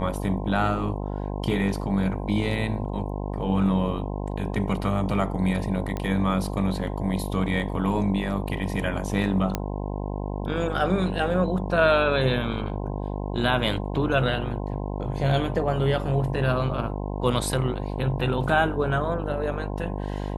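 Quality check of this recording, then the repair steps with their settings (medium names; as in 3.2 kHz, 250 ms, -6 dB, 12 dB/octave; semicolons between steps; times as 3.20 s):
buzz 50 Hz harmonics 21 -30 dBFS
5.97 s: pop -17 dBFS
9.55 s: pop -10 dBFS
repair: de-click; de-hum 50 Hz, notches 21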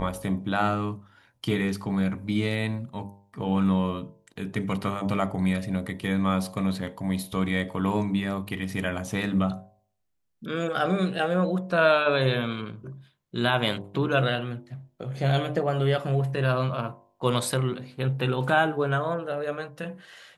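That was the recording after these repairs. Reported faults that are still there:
nothing left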